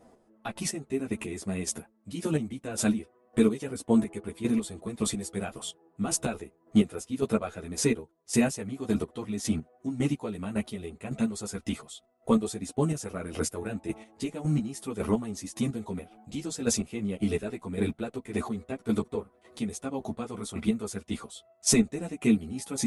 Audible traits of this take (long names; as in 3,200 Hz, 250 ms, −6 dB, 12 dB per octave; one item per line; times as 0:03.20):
chopped level 1.8 Hz, depth 65%, duty 25%
a shimmering, thickened sound